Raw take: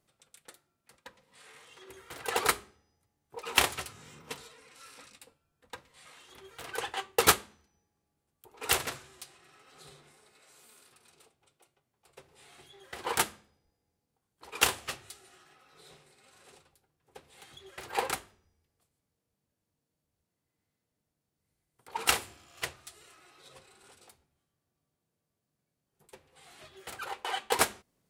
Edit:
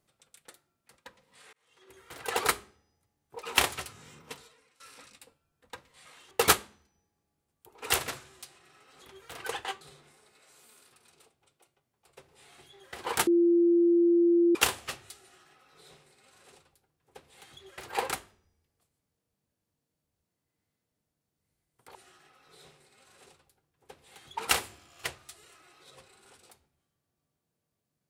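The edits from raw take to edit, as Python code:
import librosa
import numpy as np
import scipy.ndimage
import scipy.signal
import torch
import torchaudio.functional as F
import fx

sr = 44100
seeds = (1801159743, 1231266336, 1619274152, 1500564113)

y = fx.edit(x, sr, fx.fade_in_span(start_s=1.53, length_s=0.7),
    fx.fade_out_to(start_s=4.11, length_s=0.69, floor_db=-17.0),
    fx.move(start_s=6.31, length_s=0.79, to_s=9.81),
    fx.bleep(start_s=13.27, length_s=1.28, hz=343.0, db=-19.0),
    fx.duplicate(start_s=15.21, length_s=2.42, to_s=21.95), tone=tone)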